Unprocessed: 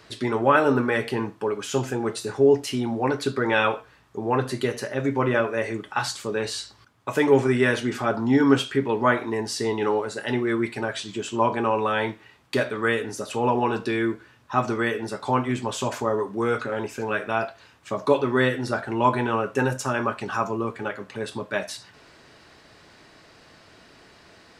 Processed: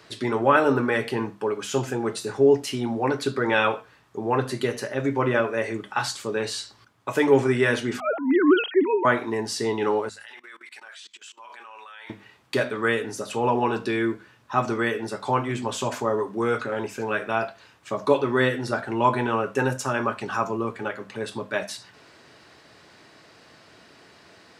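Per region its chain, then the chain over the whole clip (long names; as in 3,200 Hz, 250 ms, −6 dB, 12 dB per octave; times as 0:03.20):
0:08.00–0:09.05: three sine waves on the formant tracks + level that may fall only so fast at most 140 dB per second
0:10.09–0:12.10: high-pass filter 1,500 Hz + output level in coarse steps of 22 dB
whole clip: high-pass filter 85 Hz; mains-hum notches 50/100/150/200/250 Hz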